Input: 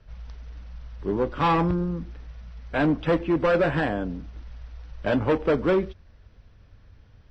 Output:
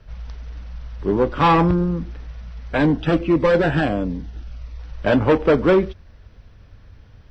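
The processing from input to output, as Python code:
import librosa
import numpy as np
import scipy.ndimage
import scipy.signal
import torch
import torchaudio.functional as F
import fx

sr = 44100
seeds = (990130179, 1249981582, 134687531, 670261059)

y = fx.notch_cascade(x, sr, direction='falling', hz=1.5, at=(2.76, 4.78), fade=0.02)
y = F.gain(torch.from_numpy(y), 6.5).numpy()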